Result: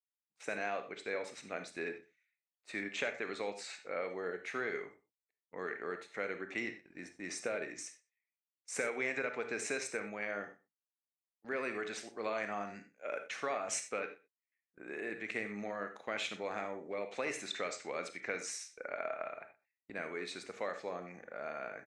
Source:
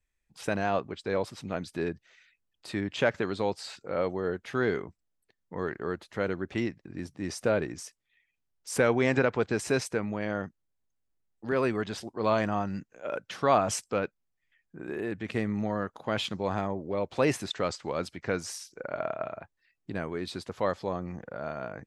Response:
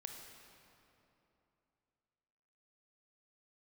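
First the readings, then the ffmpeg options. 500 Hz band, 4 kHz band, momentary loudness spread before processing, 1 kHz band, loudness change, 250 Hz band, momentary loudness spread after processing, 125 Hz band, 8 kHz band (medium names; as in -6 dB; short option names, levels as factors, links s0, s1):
-10.0 dB, -7.0 dB, 12 LU, -10.0 dB, -9.0 dB, -14.0 dB, 9 LU, -21.5 dB, -3.0 dB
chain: -filter_complex "[0:a]highpass=340,equalizer=f=350:t=q:w=4:g=-3,equalizer=f=950:t=q:w=4:g=-6,equalizer=f=2200:t=q:w=4:g=7,equalizer=f=3200:t=q:w=4:g=-9,equalizer=f=4800:t=q:w=4:g=-10,lowpass=f=8400:w=0.5412,lowpass=f=8400:w=1.3066,agate=range=0.112:threshold=0.00316:ratio=16:detection=peak,acompressor=threshold=0.0355:ratio=6,asplit=2[s0][s1];[s1]adelay=122.4,volume=0.0794,highshelf=f=4000:g=-2.76[s2];[s0][s2]amix=inputs=2:normalize=0[s3];[1:a]atrim=start_sample=2205,atrim=end_sample=4410[s4];[s3][s4]afir=irnorm=-1:irlink=0,dynaudnorm=f=120:g=5:m=1.58,adynamicequalizer=threshold=0.00282:dfrequency=1700:dqfactor=0.7:tfrequency=1700:tqfactor=0.7:attack=5:release=100:ratio=0.375:range=3:mode=boostabove:tftype=highshelf,volume=0.631"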